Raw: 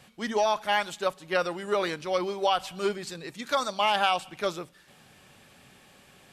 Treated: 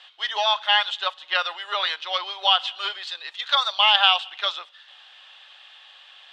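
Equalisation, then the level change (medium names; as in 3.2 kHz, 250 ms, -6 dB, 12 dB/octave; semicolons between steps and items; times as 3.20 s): high-pass 770 Hz 24 dB/octave; resonant low-pass 3.4 kHz, resonance Q 4.2; band-stop 2.3 kHz, Q 8.5; +4.0 dB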